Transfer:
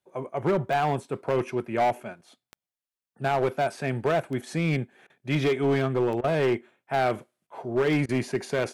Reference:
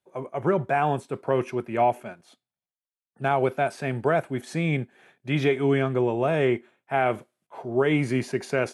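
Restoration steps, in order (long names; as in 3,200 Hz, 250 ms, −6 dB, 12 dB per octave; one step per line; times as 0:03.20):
clipped peaks rebuilt −18.5 dBFS
click removal
repair the gap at 0:05.07/0:06.21/0:08.06, 28 ms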